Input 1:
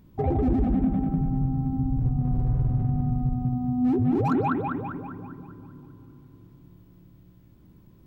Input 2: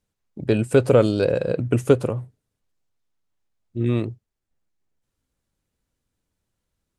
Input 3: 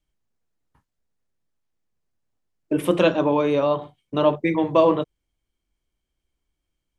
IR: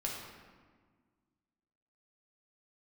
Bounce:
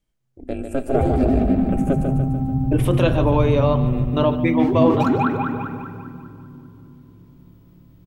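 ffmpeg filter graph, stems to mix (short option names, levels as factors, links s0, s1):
-filter_complex "[0:a]adynamicequalizer=threshold=0.00562:dfrequency=1600:dqfactor=0.7:tfrequency=1600:tqfactor=0.7:attack=5:release=100:ratio=0.375:range=3:mode=boostabove:tftype=highshelf,adelay=750,volume=1.06,asplit=3[s0][s1][s2];[s1]volume=0.473[s3];[s2]volume=0.224[s4];[1:a]aecho=1:1:1.5:0.66,aeval=exprs='val(0)*sin(2*PI*130*n/s)':c=same,equalizer=f=500:t=o:w=1:g=5,equalizer=f=1000:t=o:w=1:g=-6,equalizer=f=4000:t=o:w=1:g=-10,volume=0.473,asplit=3[s5][s6][s7];[s6]volume=0.15[s8];[s7]volume=0.531[s9];[2:a]alimiter=limit=0.316:level=0:latency=1:release=37,volume=1.12,asplit=2[s10][s11];[s11]volume=0.2[s12];[3:a]atrim=start_sample=2205[s13];[s3][s8]amix=inputs=2:normalize=0[s14];[s14][s13]afir=irnorm=-1:irlink=0[s15];[s4][s9][s12]amix=inputs=3:normalize=0,aecho=0:1:147|294|441|588|735|882|1029|1176:1|0.54|0.292|0.157|0.085|0.0459|0.0248|0.0134[s16];[s0][s5][s10][s15][s16]amix=inputs=5:normalize=0"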